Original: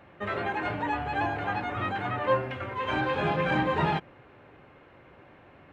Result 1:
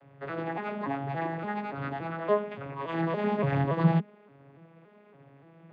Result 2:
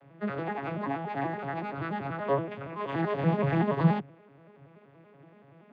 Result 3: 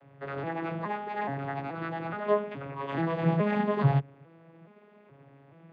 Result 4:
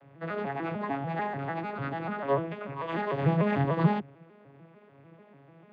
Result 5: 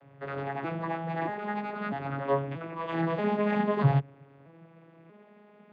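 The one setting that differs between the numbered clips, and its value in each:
vocoder on a broken chord, a note every: 285 ms, 95 ms, 424 ms, 148 ms, 636 ms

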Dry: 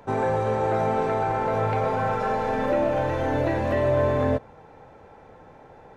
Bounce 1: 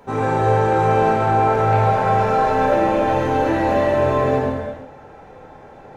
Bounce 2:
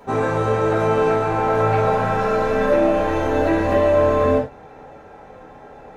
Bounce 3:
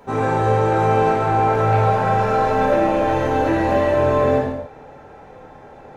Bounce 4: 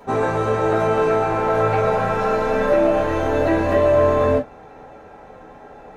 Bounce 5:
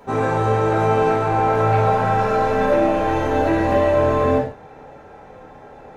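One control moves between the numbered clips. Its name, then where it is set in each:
gated-style reverb, gate: 520 ms, 130 ms, 320 ms, 80 ms, 190 ms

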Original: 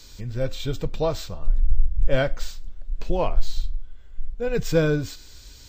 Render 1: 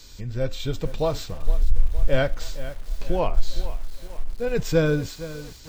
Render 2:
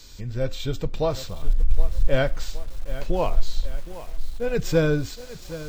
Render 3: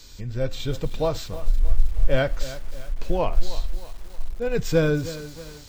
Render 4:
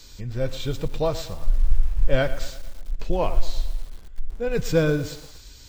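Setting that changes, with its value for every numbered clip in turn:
bit-crushed delay, time: 463 ms, 767 ms, 315 ms, 116 ms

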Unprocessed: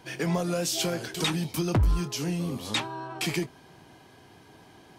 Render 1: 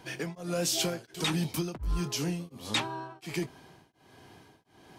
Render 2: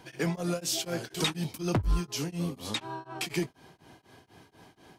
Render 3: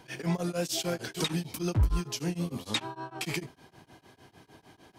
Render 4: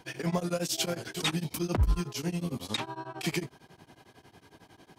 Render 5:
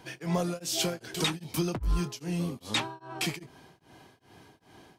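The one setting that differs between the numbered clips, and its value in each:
tremolo of two beating tones, nulls at: 1.4 Hz, 4.1 Hz, 6.6 Hz, 11 Hz, 2.5 Hz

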